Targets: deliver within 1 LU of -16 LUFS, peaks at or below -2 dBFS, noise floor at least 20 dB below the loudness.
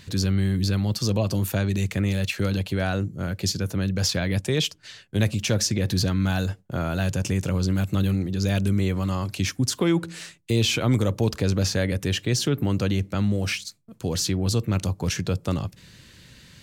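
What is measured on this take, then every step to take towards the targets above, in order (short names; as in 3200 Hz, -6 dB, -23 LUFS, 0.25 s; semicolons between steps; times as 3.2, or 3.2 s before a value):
loudness -24.5 LUFS; peak -11.5 dBFS; loudness target -16.0 LUFS
-> gain +8.5 dB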